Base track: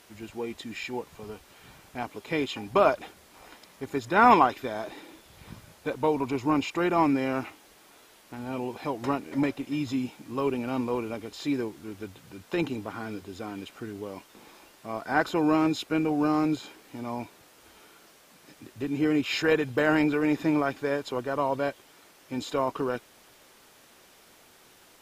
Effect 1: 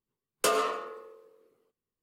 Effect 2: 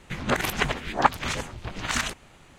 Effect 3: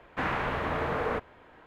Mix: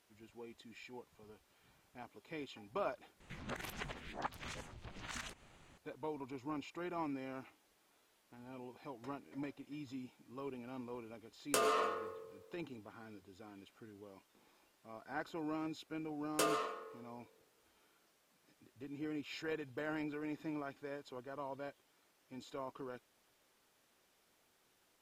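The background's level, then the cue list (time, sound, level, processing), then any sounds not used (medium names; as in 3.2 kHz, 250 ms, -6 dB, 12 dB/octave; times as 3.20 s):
base track -18 dB
3.20 s: replace with 2 -10 dB + compression 1.5:1, threshold -47 dBFS
11.10 s: add 1 -0.5 dB + compression 10:1, threshold -28 dBFS
15.95 s: add 1 -9 dB
not used: 3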